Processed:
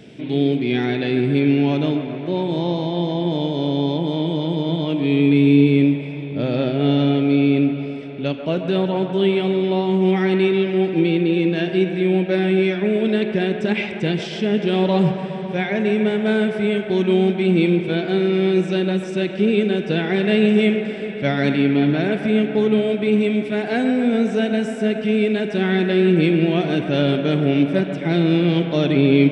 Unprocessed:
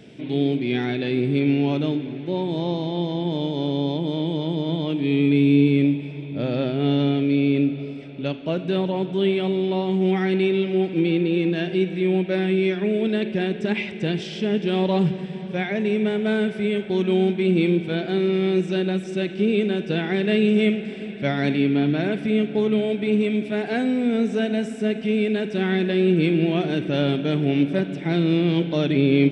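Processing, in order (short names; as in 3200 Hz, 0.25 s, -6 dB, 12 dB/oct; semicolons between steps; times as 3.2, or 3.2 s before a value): band-limited delay 0.136 s, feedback 77%, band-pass 1000 Hz, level -8 dB; gain +3 dB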